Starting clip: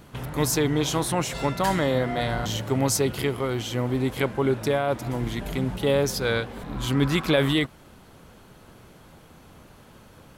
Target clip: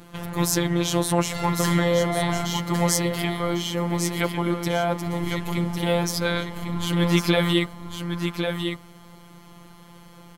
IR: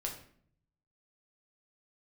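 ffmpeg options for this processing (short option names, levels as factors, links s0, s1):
-filter_complex "[0:a]afftfilt=real='hypot(re,im)*cos(PI*b)':imag='0':win_size=1024:overlap=0.75,asplit=2[s0][s1];[s1]aecho=0:1:1102:0.473[s2];[s0][s2]amix=inputs=2:normalize=0,volume=1.78"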